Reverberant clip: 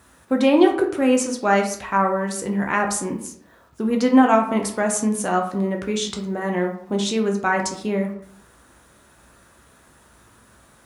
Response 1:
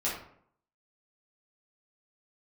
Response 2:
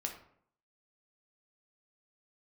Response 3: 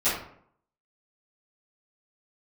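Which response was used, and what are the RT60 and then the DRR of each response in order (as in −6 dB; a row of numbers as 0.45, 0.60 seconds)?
2; 0.65, 0.65, 0.65 seconds; −8.0, 2.0, −17.0 decibels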